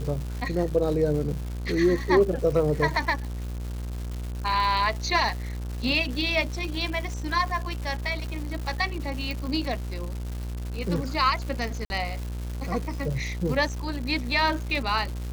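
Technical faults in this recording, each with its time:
mains buzz 60 Hz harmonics 28 −32 dBFS
surface crackle 350 per second −33 dBFS
0:09.31: click
0:11.85–0:11.90: drop-out 51 ms

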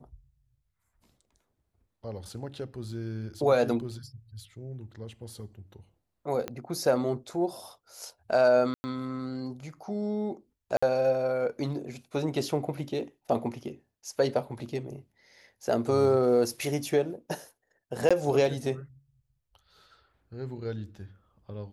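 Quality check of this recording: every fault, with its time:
0:06.48: click −19 dBFS
0:08.74–0:08.84: drop-out 100 ms
0:10.77–0:10.82: drop-out 55 ms
0:18.09–0:18.11: drop-out 16 ms

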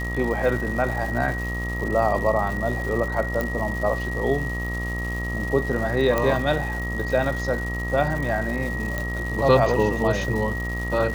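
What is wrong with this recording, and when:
mains buzz 60 Hz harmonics 22 −29 dBFS
surface crackle 390 per second −31 dBFS
whistle 1,900 Hz −30 dBFS
0:03.41: click
0:06.18: click −9 dBFS
0:08.98: click −13 dBFS

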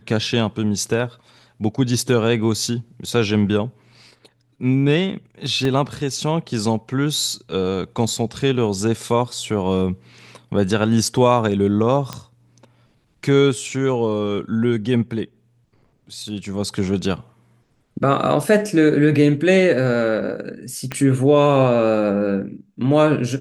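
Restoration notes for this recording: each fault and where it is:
0:05.65: drop-out 2.5 ms
0:12.13: click −13 dBFS
0:20.92: click −11 dBFS

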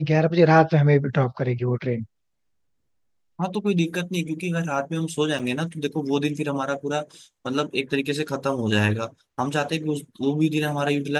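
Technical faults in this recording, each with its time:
0:05.39–0:05.40: drop-out 6.1 ms

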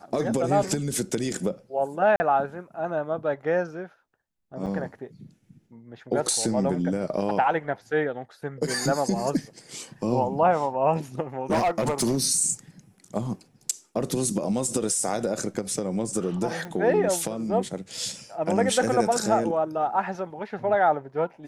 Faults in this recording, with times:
0:02.16–0:02.20: drop-out 40 ms
0:04.66–0:04.67: drop-out 5.9 ms
0:11.50–0:12.18: clipping −19 dBFS
0:16.65: click −24 dBFS

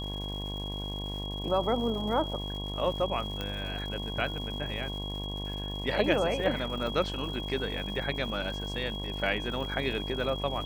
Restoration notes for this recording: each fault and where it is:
mains buzz 50 Hz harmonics 22 −37 dBFS
surface crackle 330 per second −41 dBFS
whistle 3,300 Hz −38 dBFS
0:03.41: click −20 dBFS
0:06.87: drop-out 2.2 ms

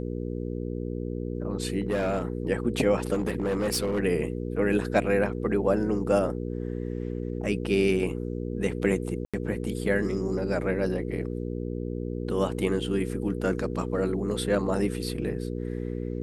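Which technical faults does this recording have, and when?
mains hum 60 Hz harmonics 8 −32 dBFS
0:01.81–0:02.22: clipping −22 dBFS
0:03.13–0:04.00: clipping −22.5 dBFS
0:09.25–0:09.34: drop-out 86 ms

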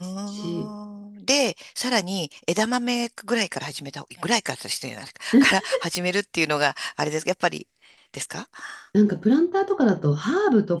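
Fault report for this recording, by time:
0:05.95: click −8 dBFS

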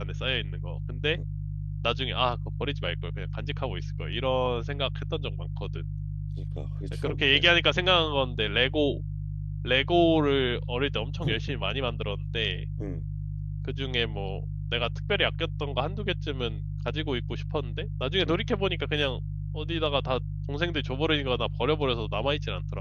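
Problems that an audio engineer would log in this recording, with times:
mains hum 50 Hz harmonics 3 −33 dBFS

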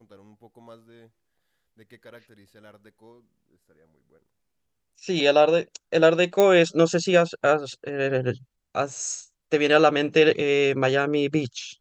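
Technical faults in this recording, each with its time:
0:06.40: click −7 dBFS

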